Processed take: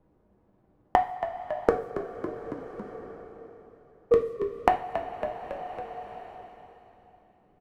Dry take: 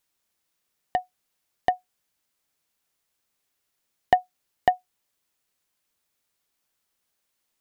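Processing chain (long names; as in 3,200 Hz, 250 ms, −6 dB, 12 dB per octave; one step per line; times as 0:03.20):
pitch shifter gated in a rhythm −8 semitones, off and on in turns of 429 ms
low-pass that shuts in the quiet parts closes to 460 Hz, open at −28.5 dBFS
noise gate −48 dBFS, range −6 dB
tilt shelving filter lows +4 dB, about 1,400 Hz
downward compressor, threshold −23 dBFS, peak gain reduction 10.5 dB
on a send: echo with shifted repeats 277 ms, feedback 39%, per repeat −59 Hz, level −15 dB
on the sum: coupled-rooms reverb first 0.39 s, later 3.2 s, from −20 dB, DRR 2 dB
multiband upward and downward compressor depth 70%
level +8.5 dB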